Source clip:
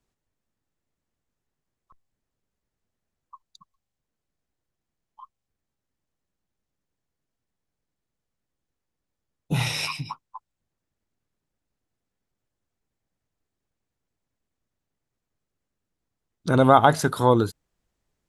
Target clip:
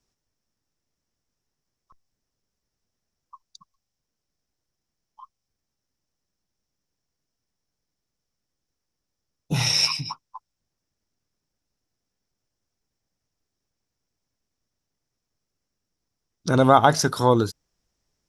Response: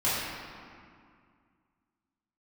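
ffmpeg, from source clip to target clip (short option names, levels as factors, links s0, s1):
-af "equalizer=f=5500:t=o:w=0.39:g=14"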